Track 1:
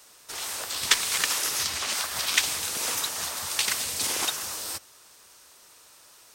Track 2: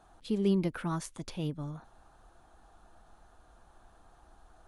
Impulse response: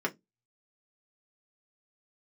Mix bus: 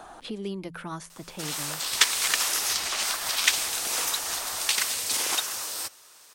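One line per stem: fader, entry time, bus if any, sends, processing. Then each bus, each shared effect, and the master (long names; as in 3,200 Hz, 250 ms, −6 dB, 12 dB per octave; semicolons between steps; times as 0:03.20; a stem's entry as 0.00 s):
+1.0 dB, 1.10 s, no send, no processing
+3.0 dB, 0.00 s, no send, hum removal 84.63 Hz, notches 2; multiband upward and downward compressor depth 70%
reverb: not used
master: low-shelf EQ 250 Hz −10 dB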